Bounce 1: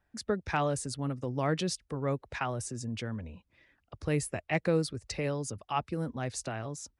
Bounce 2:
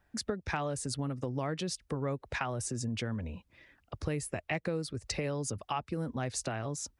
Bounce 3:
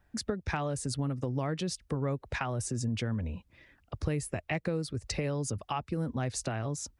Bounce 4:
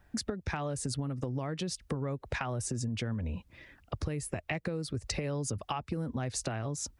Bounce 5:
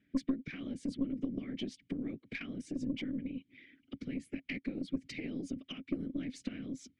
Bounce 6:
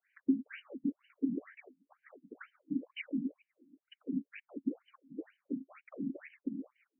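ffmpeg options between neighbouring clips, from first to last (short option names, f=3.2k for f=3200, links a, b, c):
-af "acompressor=threshold=-36dB:ratio=6,volume=5dB"
-af "lowshelf=f=210:g=5.5"
-af "acompressor=threshold=-36dB:ratio=6,volume=5dB"
-filter_complex "[0:a]afftfilt=real='hypot(re,im)*cos(2*PI*random(0))':imag='hypot(re,im)*sin(2*PI*random(1))':win_size=512:overlap=0.75,asplit=3[a][b][c];[a]bandpass=f=270:t=q:w=8,volume=0dB[d];[b]bandpass=f=2.29k:t=q:w=8,volume=-6dB[e];[c]bandpass=f=3.01k:t=q:w=8,volume=-9dB[f];[d][e][f]amix=inputs=3:normalize=0,aeval=exprs='0.0168*(cos(1*acos(clip(val(0)/0.0168,-1,1)))-cos(1*PI/2))+0.0015*(cos(4*acos(clip(val(0)/0.0168,-1,1)))-cos(4*PI/2))':c=same,volume=13.5dB"
-af "afftfilt=real='re*between(b*sr/1024,220*pow(2200/220,0.5+0.5*sin(2*PI*2.1*pts/sr))/1.41,220*pow(2200/220,0.5+0.5*sin(2*PI*2.1*pts/sr))*1.41)':imag='im*between(b*sr/1024,220*pow(2200/220,0.5+0.5*sin(2*PI*2.1*pts/sr))/1.41,220*pow(2200/220,0.5+0.5*sin(2*PI*2.1*pts/sr))*1.41)':win_size=1024:overlap=0.75,volume=4.5dB"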